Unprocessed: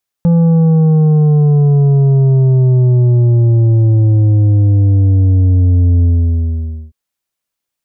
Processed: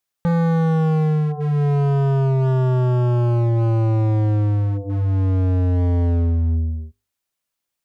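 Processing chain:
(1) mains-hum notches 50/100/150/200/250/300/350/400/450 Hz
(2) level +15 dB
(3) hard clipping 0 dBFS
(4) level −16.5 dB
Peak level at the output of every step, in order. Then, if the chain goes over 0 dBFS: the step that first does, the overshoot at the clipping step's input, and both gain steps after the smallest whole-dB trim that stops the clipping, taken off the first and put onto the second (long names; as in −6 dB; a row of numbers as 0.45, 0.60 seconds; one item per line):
−5.5, +9.5, 0.0, −16.5 dBFS
step 2, 9.5 dB
step 2 +5 dB, step 4 −6.5 dB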